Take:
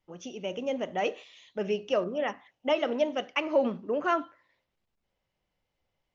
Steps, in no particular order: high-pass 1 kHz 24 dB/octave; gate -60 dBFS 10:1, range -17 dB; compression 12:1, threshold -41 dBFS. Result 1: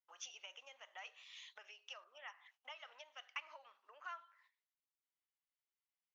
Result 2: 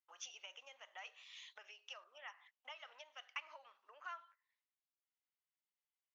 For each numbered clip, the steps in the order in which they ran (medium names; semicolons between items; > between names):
gate > compression > high-pass; compression > gate > high-pass